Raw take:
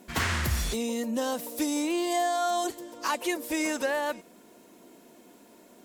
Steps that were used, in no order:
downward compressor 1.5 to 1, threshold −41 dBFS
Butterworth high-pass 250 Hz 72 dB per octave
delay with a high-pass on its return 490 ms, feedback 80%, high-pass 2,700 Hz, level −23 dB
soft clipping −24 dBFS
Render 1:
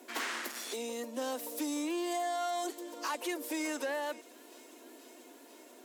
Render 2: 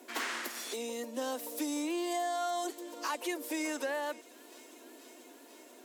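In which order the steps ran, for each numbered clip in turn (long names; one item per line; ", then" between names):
soft clipping, then delay with a high-pass on its return, then downward compressor, then Butterworth high-pass
delay with a high-pass on its return, then downward compressor, then soft clipping, then Butterworth high-pass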